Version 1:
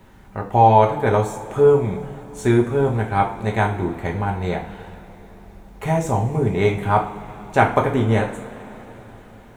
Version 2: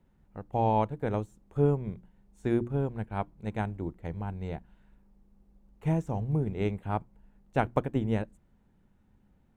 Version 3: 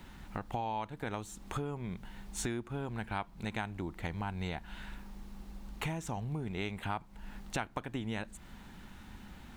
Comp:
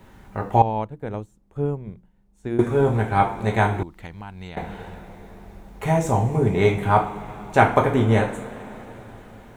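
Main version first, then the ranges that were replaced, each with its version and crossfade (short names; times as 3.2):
1
0.62–2.59 from 2
3.83–4.57 from 3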